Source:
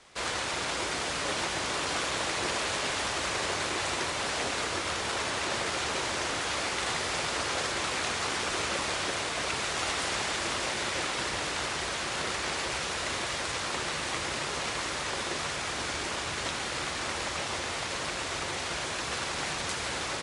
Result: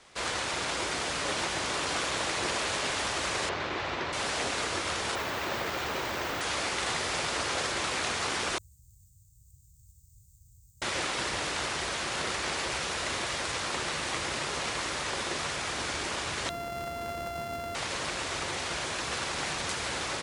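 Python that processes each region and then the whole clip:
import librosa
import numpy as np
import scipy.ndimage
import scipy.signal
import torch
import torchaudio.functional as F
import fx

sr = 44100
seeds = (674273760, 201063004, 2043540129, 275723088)

y = fx.chain(x, sr, fx.median_filter(points=5),
    fx.air_absorb(metres=140.0), at=(3.49, 4.13))
y = fx.chain(y, sr, fx.high_shelf(hz=4900.0, db=-10.5),
    fx.resample_bad(factor=2, down='none', up='hold'), at=(5.15, 6.41))
y = fx.chain(y, sr, fx.tone_stack(knobs='10-0-1'),
    fx.resample_bad(factor=4, down='filtered', up='hold'),
    fx.ellip_bandstop(low_hz=120.0, high_hz=7500.0, order=3, stop_db=50), at=(8.58, 10.82))
y = fx.chain(y, sr, fx.sample_sort(block=64),
    fx.high_shelf(hz=2300.0, db=-11.5), at=(16.49, 17.75))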